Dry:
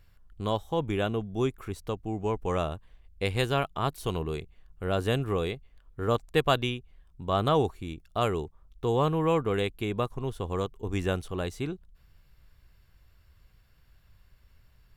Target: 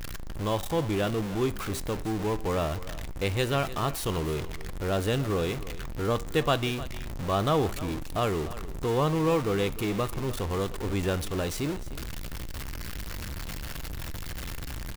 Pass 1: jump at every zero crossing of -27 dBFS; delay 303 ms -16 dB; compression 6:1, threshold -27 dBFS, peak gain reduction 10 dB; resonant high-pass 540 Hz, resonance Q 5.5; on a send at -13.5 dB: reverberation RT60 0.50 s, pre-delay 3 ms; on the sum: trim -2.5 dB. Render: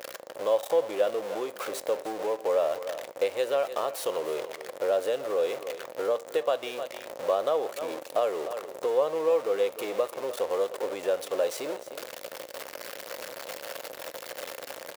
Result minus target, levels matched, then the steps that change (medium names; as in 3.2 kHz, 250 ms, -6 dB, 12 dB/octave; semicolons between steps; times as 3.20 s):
compression: peak gain reduction +10 dB; 500 Hz band +4.0 dB
remove: compression 6:1, threshold -27 dBFS, peak gain reduction 10 dB; remove: resonant high-pass 540 Hz, resonance Q 5.5